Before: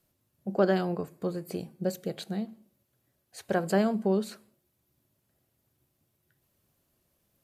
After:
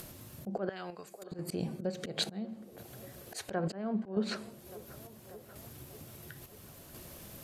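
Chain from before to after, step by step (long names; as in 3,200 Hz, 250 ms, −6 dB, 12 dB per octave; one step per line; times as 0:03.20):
treble cut that deepens with the level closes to 2,300 Hz, closed at −23 dBFS
0:00.69–0:01.32: first-order pre-emphasis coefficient 0.97
downward compressor 5 to 1, threshold −36 dBFS, peak gain reduction 15.5 dB
volume swells 233 ms
square-wave tremolo 0.72 Hz, depth 60%, duty 65%
delay with a band-pass on its return 588 ms, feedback 52%, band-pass 650 Hz, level −18.5 dB
upward compression, threshold −55 dBFS
level +16 dB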